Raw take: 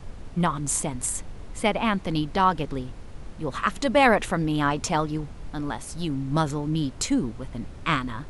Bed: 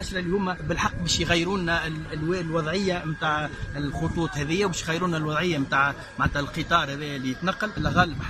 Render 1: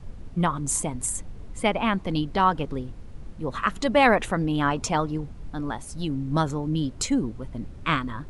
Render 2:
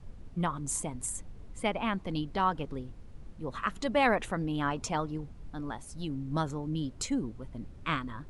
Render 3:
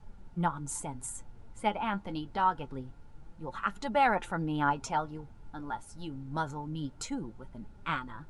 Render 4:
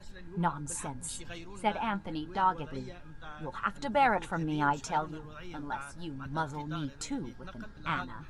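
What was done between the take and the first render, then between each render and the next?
denoiser 7 dB, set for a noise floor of -41 dBFS
gain -7.5 dB
flange 0.26 Hz, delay 4.6 ms, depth 5.5 ms, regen +54%; small resonant body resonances 870/1400 Hz, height 13 dB, ringing for 35 ms
add bed -22.5 dB

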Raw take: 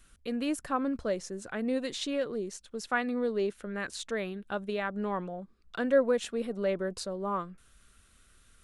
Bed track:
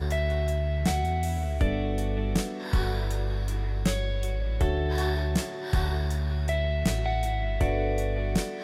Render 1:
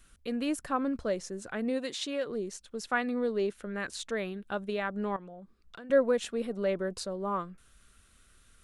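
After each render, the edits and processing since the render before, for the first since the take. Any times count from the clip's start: 1.69–2.26 HPF 180 Hz -> 390 Hz 6 dB/oct; 5.16–5.9 compressor 5:1, threshold -44 dBFS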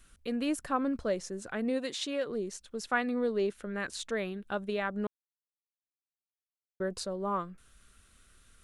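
5.07–6.8 mute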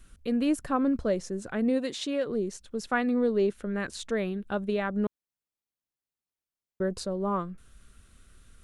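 low shelf 480 Hz +8 dB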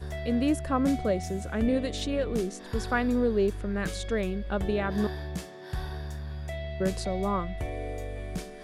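add bed track -9 dB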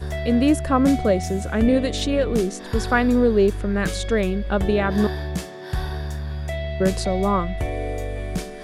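gain +8 dB

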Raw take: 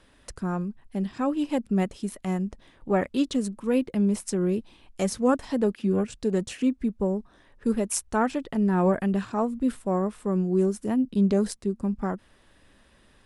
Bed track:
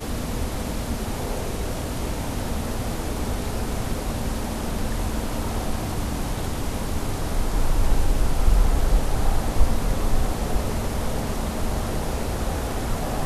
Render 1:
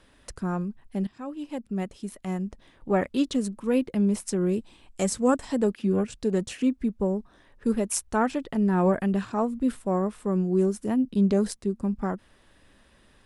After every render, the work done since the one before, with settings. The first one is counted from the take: 1.07–2.95 fade in, from -13 dB; 4.46–5.69 bell 7800 Hz +10.5 dB 0.25 oct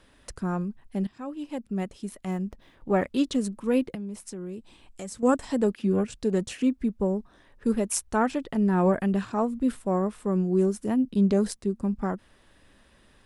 2.31–3.03 median filter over 5 samples; 3.95–5.23 compressor 2:1, threshold -43 dBFS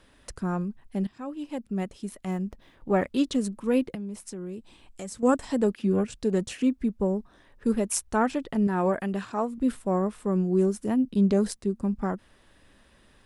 8.67–9.58 low shelf 250 Hz -8.5 dB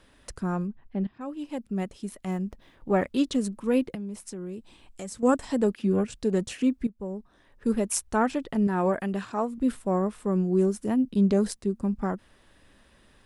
0.67–1.21 air absorption 290 m; 6.87–7.77 fade in, from -15 dB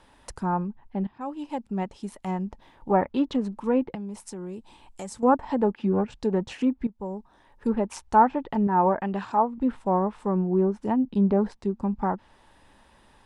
bell 880 Hz +13 dB 0.42 oct; treble ducked by the level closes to 1700 Hz, closed at -19.5 dBFS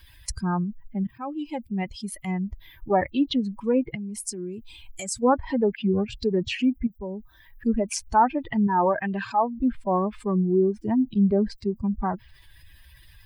per-bin expansion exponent 2; fast leveller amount 50%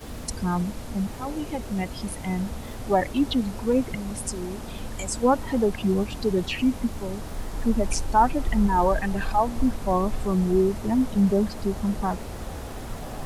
add bed track -9 dB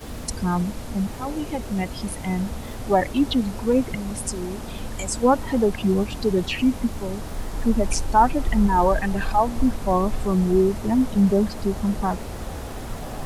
gain +2.5 dB

